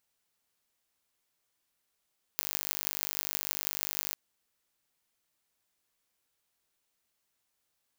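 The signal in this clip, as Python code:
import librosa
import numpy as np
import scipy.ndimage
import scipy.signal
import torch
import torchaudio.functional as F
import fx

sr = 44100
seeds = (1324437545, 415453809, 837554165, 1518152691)

y = fx.impulse_train(sr, length_s=1.76, per_s=50.0, accent_every=8, level_db=-2.0)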